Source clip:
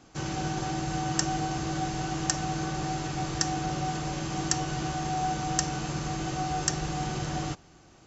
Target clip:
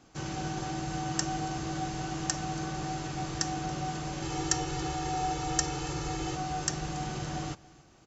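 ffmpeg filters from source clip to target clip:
-filter_complex "[0:a]asettb=1/sr,asplit=3[s0][s1][s2];[s0]atrim=end=4.224[s3];[s1]atrim=start=4.22:end=6.36,asetpts=PTS-STARTPTS,afade=t=in:d=0.004:c=qsin,afade=t=out:st=2.136:d=0.004:c=qsin,aecho=1:1:2.3:0.91,atrim=end_sample=94374[s4];[s2]atrim=start=6.356[s5];[s3][s4]acrossfade=d=0.004:c1=hsin:c2=qsin[s6];[s6][s5]acrossfade=d=0.004:c1=qsin:c2=hsin,aecho=1:1:280:0.075,volume=0.668"

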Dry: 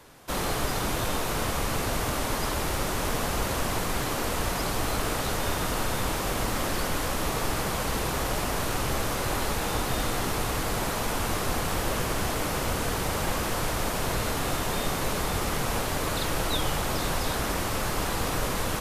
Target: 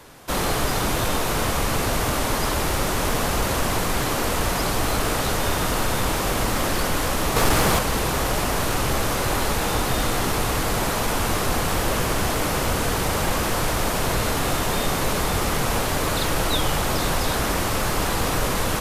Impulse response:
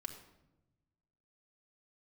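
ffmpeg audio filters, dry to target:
-filter_complex "[0:a]asettb=1/sr,asplit=3[s0][s1][s2];[s0]atrim=end=7.364[s3];[s1]atrim=start=7.36:end=7.79,asetpts=PTS-STARTPTS,afade=t=in:d=0.004:c=qsin,afade=t=out:st=0.426:d=0.004:c=qsin,acontrast=35[s4];[s2]atrim=start=7.786[s5];[s3][s4]acrossfade=d=0.004:c1=hsin:c2=qsin[s6];[s6][s5]acrossfade=d=0.004:c1=qsin:c2=hsin,asoftclip=type=tanh:threshold=0.158,volume=2"

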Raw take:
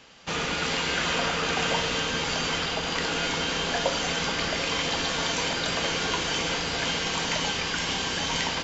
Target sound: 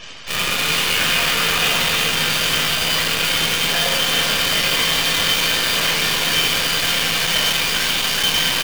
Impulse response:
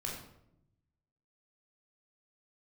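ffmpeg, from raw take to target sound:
-filter_complex "[0:a]equalizer=f=3000:t=o:w=2.6:g=14,areverse,acompressor=mode=upward:threshold=0.0501:ratio=2.5,areverse,volume=3.55,asoftclip=hard,volume=0.282,alimiter=limit=0.0891:level=0:latency=1,aecho=1:1:159|386:0.126|0.473[s0];[1:a]atrim=start_sample=2205[s1];[s0][s1]afir=irnorm=-1:irlink=0,acrusher=bits=5:dc=4:mix=0:aa=0.000001,acontrast=79,afftfilt=real='re*gte(hypot(re,im),0.00891)':imag='im*gte(hypot(re,im),0.00891)':win_size=1024:overlap=0.75"

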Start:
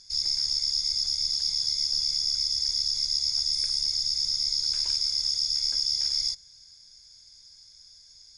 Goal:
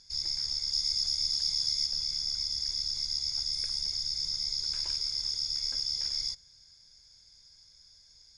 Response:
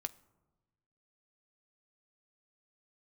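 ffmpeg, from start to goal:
-af "asetnsamples=n=441:p=0,asendcmd='0.73 highshelf g -4;1.86 highshelf g -9',highshelf=f=4000:g=-9"

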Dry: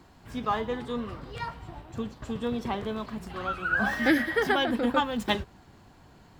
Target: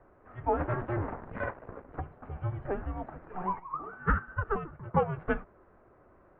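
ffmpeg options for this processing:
-filter_complex "[0:a]asplit=3[s0][s1][s2];[s0]afade=t=out:st=0.58:d=0.02[s3];[s1]aeval=exprs='0.119*(cos(1*acos(clip(val(0)/0.119,-1,1)))-cos(1*PI/2))+0.00841*(cos(7*acos(clip(val(0)/0.119,-1,1)))-cos(7*PI/2))+0.0422*(cos(8*acos(clip(val(0)/0.119,-1,1)))-cos(8*PI/2))':c=same,afade=t=in:st=0.58:d=0.02,afade=t=out:st=1.99:d=0.02[s4];[s2]afade=t=in:st=1.99:d=0.02[s5];[s3][s4][s5]amix=inputs=3:normalize=0,asplit=3[s6][s7][s8];[s6]afade=t=out:st=3.58:d=0.02[s9];[s7]agate=range=0.2:threshold=0.0794:ratio=16:detection=peak,afade=t=in:st=3.58:d=0.02,afade=t=out:st=4.93:d=0.02[s10];[s8]afade=t=in:st=4.93:d=0.02[s11];[s9][s10][s11]amix=inputs=3:normalize=0,highpass=f=340:t=q:w=0.5412,highpass=f=340:t=q:w=1.307,lowpass=f=2100:t=q:w=0.5176,lowpass=f=2100:t=q:w=0.7071,lowpass=f=2100:t=q:w=1.932,afreqshift=-370"

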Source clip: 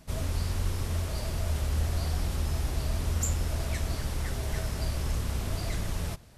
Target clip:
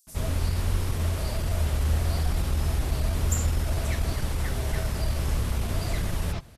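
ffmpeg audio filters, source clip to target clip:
-filter_complex "[0:a]acrossover=split=5900[s0][s1];[s0]adelay=70[s2];[s2][s1]amix=inputs=2:normalize=0,atempo=0.97,volume=1.58"

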